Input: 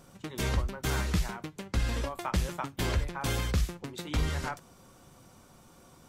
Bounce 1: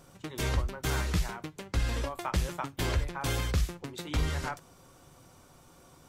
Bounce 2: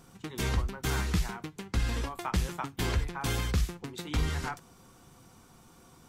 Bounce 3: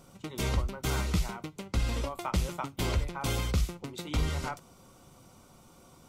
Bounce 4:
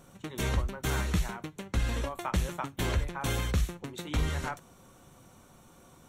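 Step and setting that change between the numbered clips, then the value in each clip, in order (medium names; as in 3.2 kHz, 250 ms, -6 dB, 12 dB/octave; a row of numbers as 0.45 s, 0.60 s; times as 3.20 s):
band-stop, frequency: 210 Hz, 580 Hz, 1.7 kHz, 4.9 kHz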